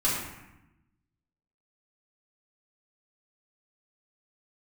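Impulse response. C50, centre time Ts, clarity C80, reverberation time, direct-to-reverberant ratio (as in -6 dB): 1.0 dB, 65 ms, 3.5 dB, 0.90 s, -8.5 dB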